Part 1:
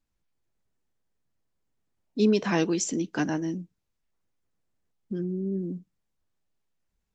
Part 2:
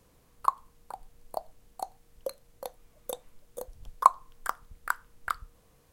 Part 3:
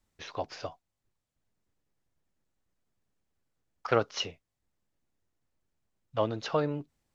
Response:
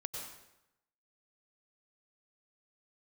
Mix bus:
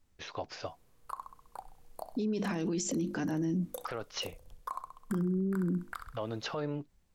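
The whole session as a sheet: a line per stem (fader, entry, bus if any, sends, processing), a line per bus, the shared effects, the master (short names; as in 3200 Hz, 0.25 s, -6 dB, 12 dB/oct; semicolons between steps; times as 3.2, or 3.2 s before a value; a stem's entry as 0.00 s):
+2.0 dB, 0.00 s, bus A, no send, no echo send, low shelf 310 Hz +9.5 dB
-7.0 dB, 0.65 s, bus A, no send, echo send -15.5 dB, AGC gain up to 4 dB
-0.5 dB, 0.00 s, no bus, no send, no echo send, compressor, threshold -28 dBFS, peak gain reduction 9.5 dB
bus A: 0.0 dB, notches 50/100/150/200/250/300/350 Hz; limiter -20.5 dBFS, peak gain reduction 15.5 dB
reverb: off
echo: feedback echo 65 ms, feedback 50%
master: limiter -25.5 dBFS, peak gain reduction 11 dB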